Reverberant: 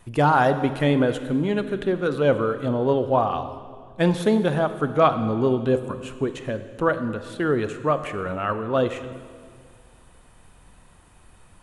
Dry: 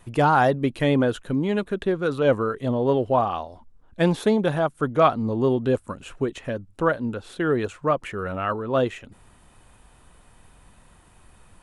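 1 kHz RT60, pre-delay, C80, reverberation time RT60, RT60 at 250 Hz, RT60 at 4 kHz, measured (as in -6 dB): 1.8 s, 21 ms, 12.0 dB, 2.0 s, 2.3 s, 1.8 s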